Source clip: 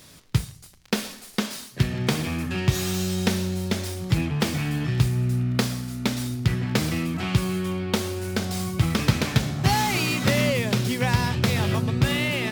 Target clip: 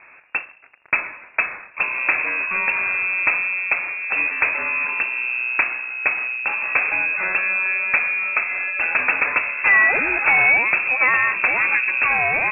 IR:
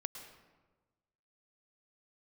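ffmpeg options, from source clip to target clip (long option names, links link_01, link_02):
-filter_complex "[0:a]acrossover=split=240 2100:gain=0.0794 1 0.126[link_01][link_02][link_03];[link_01][link_02][link_03]amix=inputs=3:normalize=0,apsyclip=19dB,lowpass=frequency=2400:width_type=q:width=0.5098,lowpass=frequency=2400:width_type=q:width=0.6013,lowpass=frequency=2400:width_type=q:width=0.9,lowpass=frequency=2400:width_type=q:width=2.563,afreqshift=-2800,volume=-8dB"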